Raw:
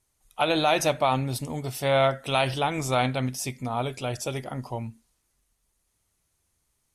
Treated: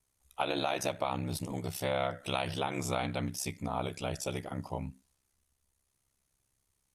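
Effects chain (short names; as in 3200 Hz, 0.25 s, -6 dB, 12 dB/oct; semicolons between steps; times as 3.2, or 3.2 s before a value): compressor 4:1, threshold -25 dBFS, peak gain reduction 7 dB; ring modulator 33 Hz; gain -1.5 dB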